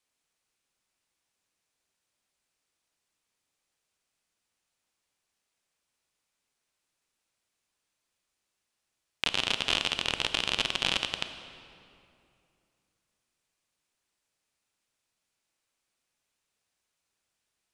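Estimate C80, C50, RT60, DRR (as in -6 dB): 10.0 dB, 9.5 dB, 2.6 s, 8.5 dB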